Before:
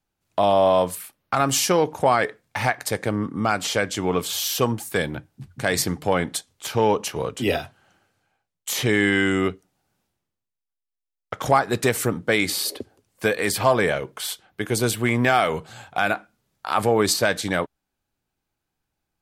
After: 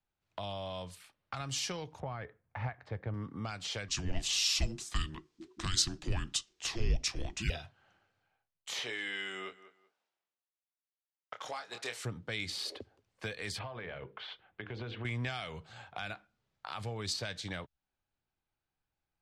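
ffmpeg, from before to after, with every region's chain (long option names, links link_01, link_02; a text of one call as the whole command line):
ffmpeg -i in.wav -filter_complex "[0:a]asettb=1/sr,asplit=3[link_01][link_02][link_03];[link_01]atrim=end=2.004[link_04];[link_02]atrim=start=2:end=3.14,asetpts=PTS-STARTPTS,afade=type=in:duration=0.004:curve=qsin,afade=type=out:start_time=1.136:duration=0.004:curve=qsin,lowpass=1500,equalizer=frequency=73:width_type=o:width=1.2:gain=6.5[link_05];[link_03]atrim=start=3.136[link_06];[link_04][link_05]acrossfade=duration=0.004:curve1=hsin:curve2=qsin[link_07];[link_07][link_06]acrossfade=duration=0.004:curve1=qsin:curve2=hsin,asettb=1/sr,asplit=3[link_08][link_09][link_10];[link_08]atrim=end=3.884[link_11];[link_09]atrim=start=3.88:end=7.5,asetpts=PTS-STARTPTS,afade=type=in:duration=0.004:curve=qsin,afade=type=out:start_time=3.616:duration=0.004:curve=qsin,equalizer=frequency=6900:width=0.67:gain=12,afreqshift=-460[link_12];[link_10]atrim=start=7.496[link_13];[link_11][link_12]acrossfade=duration=0.004:curve1=hsin:curve2=qsin[link_14];[link_14][link_13]acrossfade=duration=0.004:curve1=qsin:curve2=hsin,asettb=1/sr,asplit=3[link_15][link_16][link_17];[link_15]atrim=end=8.794[link_18];[link_16]atrim=start=8.79:end=12.05,asetpts=PTS-STARTPTS,afade=type=in:duration=0.004:curve=qsin,afade=type=out:start_time=3.256:duration=0.004:curve=qsin,highpass=470,asplit=2[link_19][link_20];[link_20]adelay=26,volume=-6.5dB[link_21];[link_19][link_21]amix=inputs=2:normalize=0,atrim=end_sample=143766,aecho=1:1:192|384:0.0794|0.0151,atrim=end_sample=143766[link_22];[link_17]atrim=start=12.046[link_23];[link_18][link_22]acrossfade=duration=0.004:curve1=hsin:curve2=qsin[link_24];[link_24][link_23]acrossfade=duration=0.004:curve1=qsin:curve2=hsin,asettb=1/sr,asplit=3[link_25][link_26][link_27];[link_25]atrim=end=13.594[link_28];[link_26]atrim=start=13.59:end=15.05,asetpts=PTS-STARTPTS,afade=type=in:duration=0.004:curve=qsin,afade=type=out:start_time=1.456:duration=0.004:curve=qsin,lowpass=frequency=3300:width=0.5412,lowpass=frequency=3300:width=1.3066,bandreject=frequency=50:width_type=h:width=6,bandreject=frequency=100:width_type=h:width=6,bandreject=frequency=150:width_type=h:width=6,bandreject=frequency=200:width_type=h:width=6,bandreject=frequency=250:width_type=h:width=6,bandreject=frequency=300:width_type=h:width=6,bandreject=frequency=350:width_type=h:width=6,bandreject=frequency=400:width_type=h:width=6,bandreject=frequency=450:width_type=h:width=6,bandreject=frequency=500:width_type=h:width=6,acompressor=threshold=-24dB:ratio=5:attack=3.2:release=140:knee=1:detection=peak[link_29];[link_27]atrim=start=15.046[link_30];[link_28][link_29]acrossfade=duration=0.004:curve1=hsin:curve2=qsin[link_31];[link_31][link_30]acrossfade=duration=0.004:curve1=qsin:curve2=hsin,lowpass=4400,equalizer=frequency=250:width=0.83:gain=-5,acrossover=split=160|3000[link_32][link_33][link_34];[link_33]acompressor=threshold=-35dB:ratio=5[link_35];[link_32][link_35][link_34]amix=inputs=3:normalize=0,volume=-7dB" out.wav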